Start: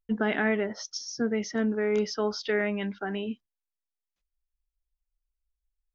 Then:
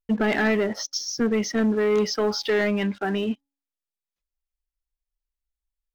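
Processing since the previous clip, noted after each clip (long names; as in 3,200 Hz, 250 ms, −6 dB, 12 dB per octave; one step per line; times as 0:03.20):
notch filter 1,500 Hz, Q 19
hum removal 278.1 Hz, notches 3
leveller curve on the samples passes 2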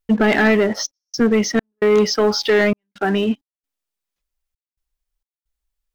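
gate pattern "xxxx.xx." 66 BPM −60 dB
level +7 dB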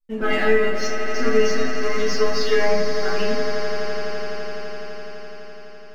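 stiff-string resonator 85 Hz, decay 0.32 s, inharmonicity 0.002
echo that builds up and dies away 84 ms, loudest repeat 8, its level −12.5 dB
rectangular room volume 84 cubic metres, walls mixed, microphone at 2.1 metres
level −5.5 dB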